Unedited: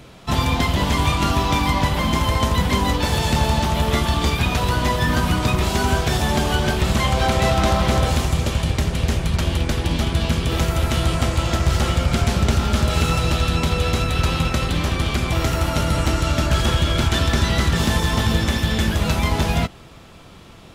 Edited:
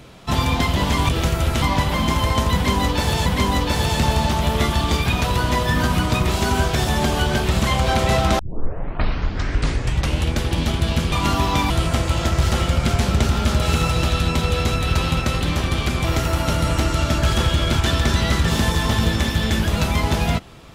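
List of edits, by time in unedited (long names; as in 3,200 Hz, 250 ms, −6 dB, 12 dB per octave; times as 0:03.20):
0:01.09–0:01.67: swap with 0:10.45–0:10.98
0:02.59–0:03.31: repeat, 2 plays
0:07.72: tape start 1.94 s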